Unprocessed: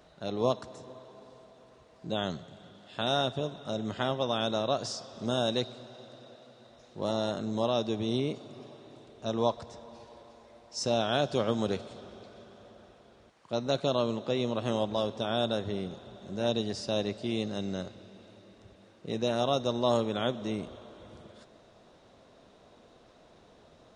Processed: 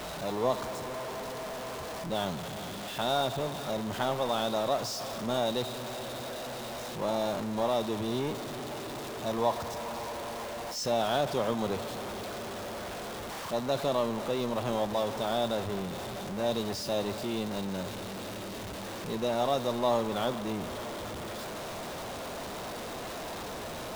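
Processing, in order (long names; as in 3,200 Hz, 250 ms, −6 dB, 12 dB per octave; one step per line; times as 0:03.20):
converter with a step at zero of −29 dBFS
dynamic equaliser 900 Hz, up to +7 dB, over −42 dBFS, Q 1.4
level −5.5 dB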